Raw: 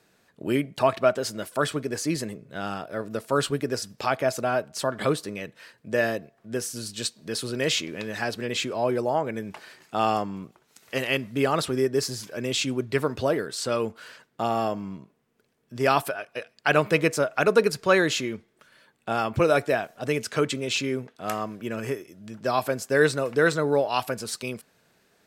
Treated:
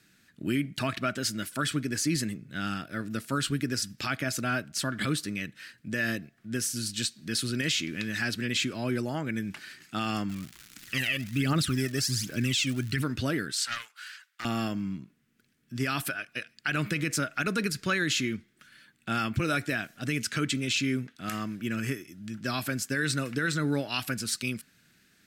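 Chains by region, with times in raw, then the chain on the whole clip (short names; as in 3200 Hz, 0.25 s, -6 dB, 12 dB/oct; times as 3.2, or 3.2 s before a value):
10.28–13.01 phaser 1.3 Hz, delay 1.8 ms, feedback 67% + crackle 260/s -35 dBFS
13.52–14.45 HPF 1000 Hz 24 dB/oct + hard clip -20.5 dBFS + Doppler distortion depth 0.18 ms
whole clip: band shelf 660 Hz -15 dB; limiter -20.5 dBFS; gain +2.5 dB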